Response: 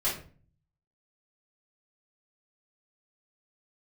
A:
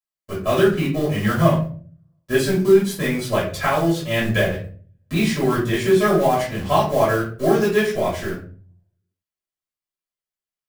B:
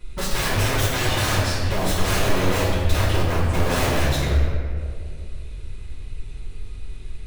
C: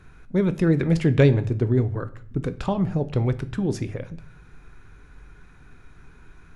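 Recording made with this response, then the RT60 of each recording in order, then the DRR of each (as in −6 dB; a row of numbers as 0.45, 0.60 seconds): A; 0.40, 2.2, 0.60 seconds; −9.0, −11.5, 10.5 decibels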